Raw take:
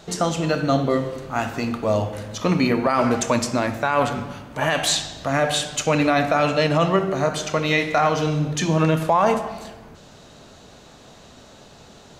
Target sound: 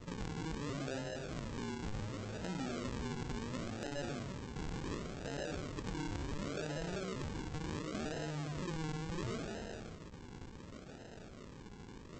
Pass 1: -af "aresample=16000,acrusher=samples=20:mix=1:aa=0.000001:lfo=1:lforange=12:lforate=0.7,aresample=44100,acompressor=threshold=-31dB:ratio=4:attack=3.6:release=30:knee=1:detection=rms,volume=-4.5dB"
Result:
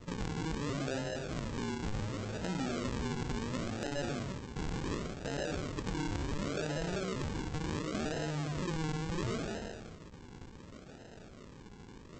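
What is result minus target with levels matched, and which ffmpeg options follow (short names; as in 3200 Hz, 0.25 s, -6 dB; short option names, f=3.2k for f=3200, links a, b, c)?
compressor: peak gain reduction -4.5 dB
-af "aresample=16000,acrusher=samples=20:mix=1:aa=0.000001:lfo=1:lforange=12:lforate=0.7,aresample=44100,acompressor=threshold=-37dB:ratio=4:attack=3.6:release=30:knee=1:detection=rms,volume=-4.5dB"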